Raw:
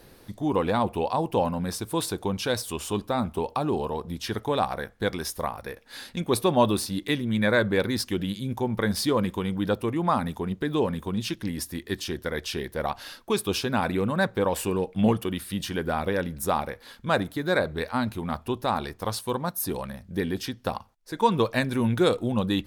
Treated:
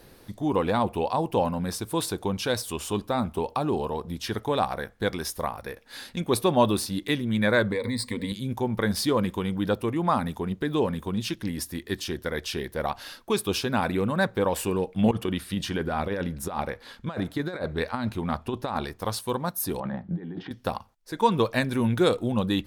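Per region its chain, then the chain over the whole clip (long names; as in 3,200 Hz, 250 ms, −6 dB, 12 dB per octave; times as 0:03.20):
0:07.72–0:08.32: EQ curve with evenly spaced ripples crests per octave 0.97, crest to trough 17 dB + downward compressor 10 to 1, threshold −24 dBFS
0:15.11–0:18.85: high-shelf EQ 10,000 Hz −11.5 dB + compressor whose output falls as the input rises −27 dBFS, ratio −0.5
0:19.80–0:20.51: compressor whose output falls as the input rises −37 dBFS + loudspeaker in its box 130–2,800 Hz, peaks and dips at 170 Hz +10 dB, 320 Hz +8 dB, 800 Hz +9 dB, 2,500 Hz −9 dB
whole clip: no processing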